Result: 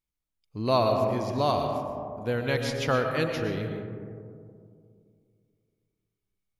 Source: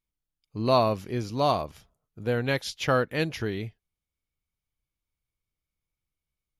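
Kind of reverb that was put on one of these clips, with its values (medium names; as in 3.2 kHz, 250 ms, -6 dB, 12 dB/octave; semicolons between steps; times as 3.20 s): algorithmic reverb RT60 2.4 s, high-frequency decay 0.25×, pre-delay 75 ms, DRR 3.5 dB; trim -2 dB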